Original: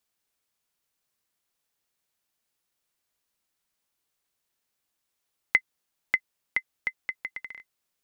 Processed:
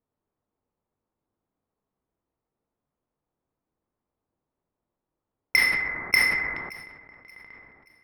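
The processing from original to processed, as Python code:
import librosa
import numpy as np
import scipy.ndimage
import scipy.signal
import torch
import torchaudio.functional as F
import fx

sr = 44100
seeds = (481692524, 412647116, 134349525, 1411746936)

p1 = np.repeat(x[::6], 6)[:len(x)]
p2 = fx.graphic_eq_15(p1, sr, hz=(630, 1600, 4000), db=(-4, -4, 7))
p3 = fx.level_steps(p2, sr, step_db=22)
p4 = fx.rev_plate(p3, sr, seeds[0], rt60_s=2.3, hf_ratio=0.3, predelay_ms=0, drr_db=2.0)
p5 = fx.env_lowpass(p4, sr, base_hz=810.0, full_db=-27.0)
p6 = fx.high_shelf(p5, sr, hz=3100.0, db=-7.0)
p7 = p6 + fx.echo_wet_highpass(p6, sr, ms=577, feedback_pct=38, hz=1600.0, wet_db=-21.5, dry=0)
p8 = fx.sustainer(p7, sr, db_per_s=37.0)
y = F.gain(torch.from_numpy(p8), 8.0).numpy()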